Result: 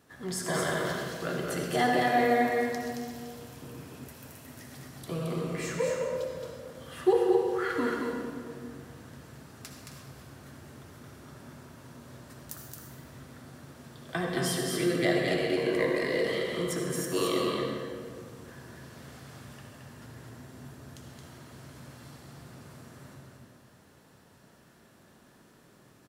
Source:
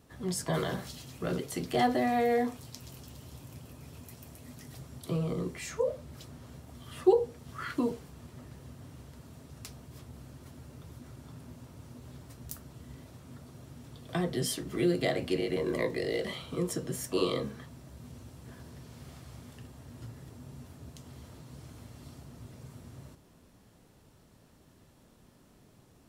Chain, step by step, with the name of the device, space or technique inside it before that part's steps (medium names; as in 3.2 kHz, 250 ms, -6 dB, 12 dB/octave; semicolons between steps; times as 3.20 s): stadium PA (high-pass 220 Hz 6 dB/octave; peaking EQ 1.6 kHz +7 dB 0.53 oct; loudspeakers at several distances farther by 76 m -4 dB, 92 m -12 dB; reverberation RT60 2.0 s, pre-delay 56 ms, DRR 1.5 dB); 3.62–4.08 s: peaking EQ 290 Hz +6 dB 1.8 oct